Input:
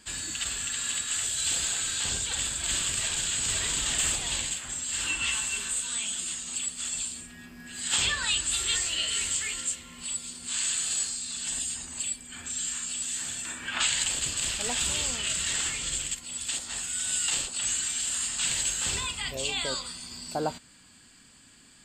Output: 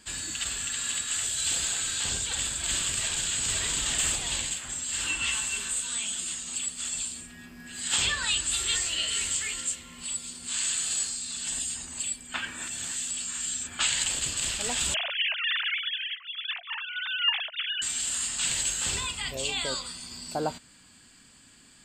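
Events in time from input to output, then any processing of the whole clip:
12.34–13.79 reverse
14.94–17.82 sine-wave speech

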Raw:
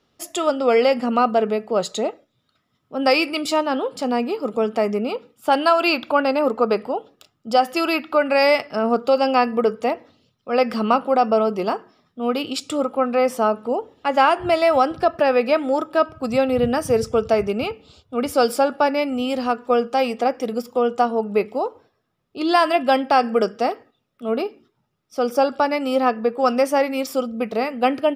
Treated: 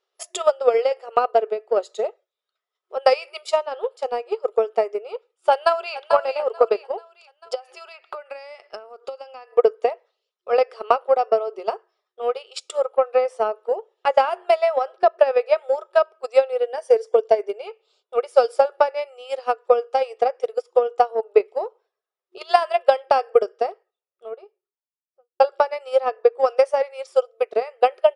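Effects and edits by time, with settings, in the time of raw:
5.51–5.98 echo throw 0.44 s, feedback 50%, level -7.5 dB
7.54–9.51 compressor 10:1, threshold -25 dBFS
14.54–15.17 high shelf 9100 Hz -> 6100 Hz -9.5 dB
16.63–17.67 notch comb 1300 Hz
23.07–25.4 studio fade out
whole clip: FFT band-pass 360–11000 Hz; dynamic EQ 500 Hz, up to +6 dB, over -28 dBFS, Q 0.93; transient shaper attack +12 dB, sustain -3 dB; gain -11.5 dB

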